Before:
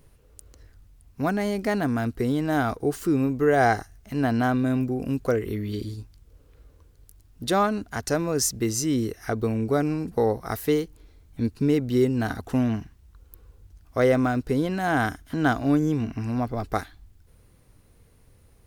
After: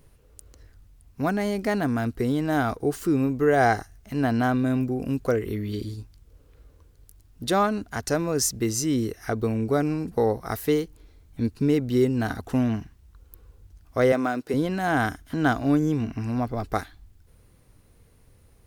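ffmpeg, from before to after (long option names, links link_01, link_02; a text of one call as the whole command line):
ffmpeg -i in.wav -filter_complex "[0:a]asettb=1/sr,asplit=3[link_01][link_02][link_03];[link_01]atrim=end=14.124[link_04];[link_02]atrim=start=14.12:end=14.54,asetpts=PTS-STARTPTS,afade=type=in:duration=0.004:curve=qsin,afade=type=out:start_time=0.416:duration=0.004:curve=qsin,highpass=270[link_05];[link_03]atrim=start=14.536[link_06];[link_04][link_05]acrossfade=duration=0.004:curve1=hsin:curve2=qsin[link_07];[link_07][link_06]acrossfade=duration=0.004:curve1=qsin:curve2=hsin" out.wav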